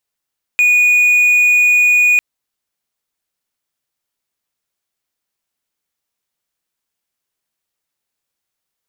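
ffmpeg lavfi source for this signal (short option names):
-f lavfi -i "aevalsrc='0.501*(1-4*abs(mod(2460*t+0.25,1)-0.5))':d=1.6:s=44100"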